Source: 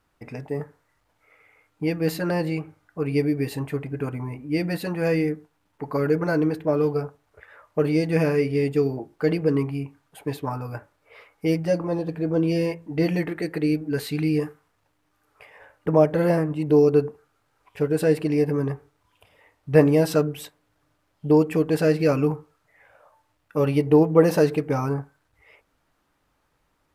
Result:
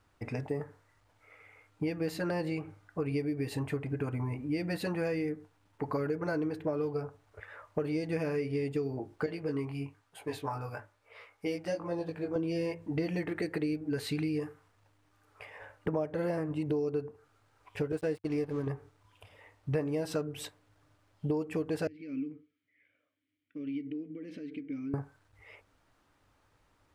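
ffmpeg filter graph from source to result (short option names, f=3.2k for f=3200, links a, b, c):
-filter_complex "[0:a]asettb=1/sr,asplit=3[a][b][c];[a]atrim=end=9.264[d];[b]atrim=start=9.26:end=12.36,asetpts=PTS-STARTPTS,afade=t=in:d=0.004:c=qsin,afade=t=out:st=3.096:d=0.004:c=qsin,lowshelf=f=400:g=-7.5,flanger=delay=17.5:depth=5.1:speed=1.1[e];[c]atrim=start=12.356[f];[d][e]acrossfade=d=0.004:c1=hsin:c2=qsin[g];[g][f]acrossfade=d=0.004:c1=qsin:c2=hsin,asettb=1/sr,asplit=3[h][i][j];[h]atrim=end=17.924[k];[i]atrim=start=17.92:end=18.67,asetpts=PTS-STARTPTS,afade=t=in:d=0.004:c=qsin,afade=t=out:st=0.746:d=0.004:c=qsin,agate=range=-33dB:threshold=-22dB:ratio=3:release=100:detection=peak,aeval=exprs='sgn(val(0))*max(abs(val(0))-0.00631,0)':c=same[l];[j]atrim=start=18.666[m];[k][l]acrossfade=d=0.004:c1=hsin:c2=qsin[n];[n][m]acrossfade=d=0.004:c1=qsin:c2=hsin,asettb=1/sr,asplit=3[o][p][q];[o]atrim=end=21.874[r];[p]atrim=start=21.87:end=24.94,asetpts=PTS-STARTPTS,afade=t=in:d=0.004:c=qsin,afade=t=out:st=3.066:d=0.004:c=qsin,acompressor=threshold=-25dB:ratio=5:attack=3.2:release=140:knee=1:detection=peak,asplit=3[s][t][u];[s]bandpass=f=270:t=q:w=8,volume=0dB[v];[t]bandpass=f=2.29k:t=q:w=8,volume=-6dB[w];[u]bandpass=f=3.01k:t=q:w=8,volume=-9dB[x];[v][w][x]amix=inputs=3:normalize=0[y];[q]atrim=start=24.936[z];[r][y]acrossfade=d=0.004:c1=hsin:c2=qsin[aa];[aa][z]acrossfade=d=0.004:c1=qsin:c2=hsin,equalizer=f=100:t=o:w=0.33:g=9,equalizer=f=160:t=o:w=0.33:g=-4,equalizer=f=12.5k:t=o:w=0.33:g=-9,acompressor=threshold=-30dB:ratio=6"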